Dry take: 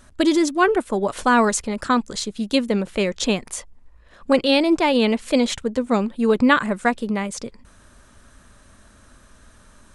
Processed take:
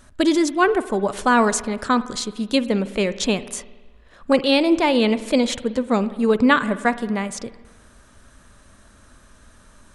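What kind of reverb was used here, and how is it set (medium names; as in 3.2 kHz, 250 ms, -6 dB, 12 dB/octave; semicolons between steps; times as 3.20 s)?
spring tank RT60 1.3 s, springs 51 ms, chirp 55 ms, DRR 14.5 dB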